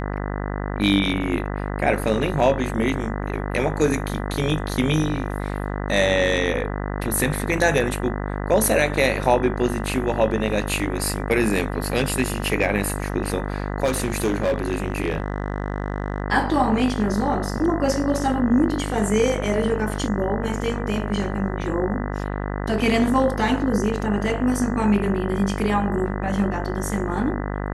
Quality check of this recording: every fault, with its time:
mains buzz 50 Hz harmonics 40 −27 dBFS
0:13.84–0:16.22: clipping −16.5 dBFS

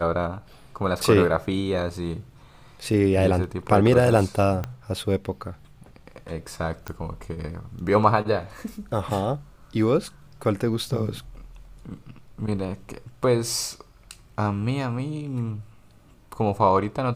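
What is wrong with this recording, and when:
0:04.64: click −16 dBFS
0:06.88: click −17 dBFS

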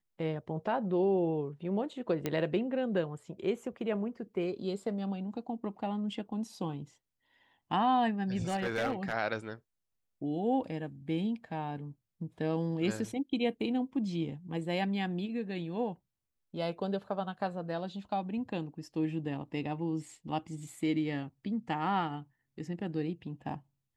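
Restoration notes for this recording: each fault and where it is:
0:02.26: click −17 dBFS
0:08.48–0:09.13: clipping −27 dBFS

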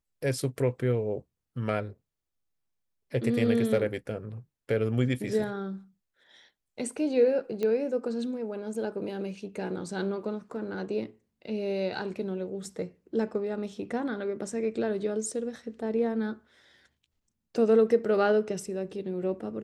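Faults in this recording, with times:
0:07.63: click −19 dBFS

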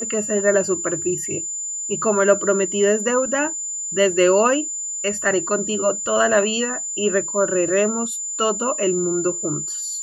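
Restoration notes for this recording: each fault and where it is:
whistle 7,100 Hz −25 dBFS

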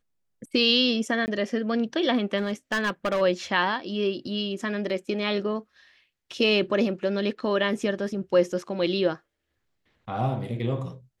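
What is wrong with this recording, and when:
0:01.26–0:01.28: drop-out 19 ms
0:02.37–0:03.22: clipping −21 dBFS

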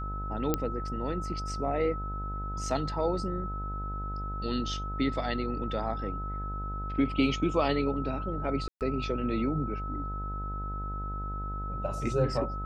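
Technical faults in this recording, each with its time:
mains buzz 50 Hz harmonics 19 −36 dBFS
whistle 1,300 Hz −37 dBFS
0:00.54: click −12 dBFS
0:08.68–0:08.81: drop-out 128 ms

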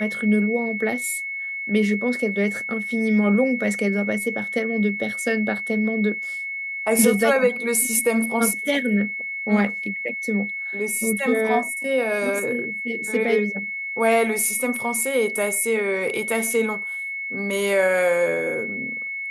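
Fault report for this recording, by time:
whistle 2,200 Hz −27 dBFS

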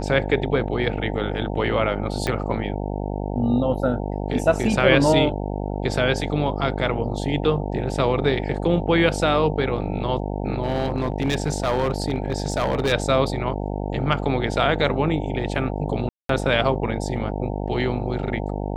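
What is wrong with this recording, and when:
mains buzz 50 Hz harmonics 18 −27 dBFS
0:02.27: click −10 dBFS
0:10.62–0:12.93: clipping −16.5 dBFS
0:16.09–0:16.29: drop-out 203 ms

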